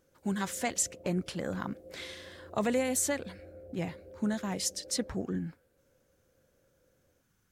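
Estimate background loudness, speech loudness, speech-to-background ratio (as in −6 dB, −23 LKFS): −52.0 LKFS, −33.5 LKFS, 18.5 dB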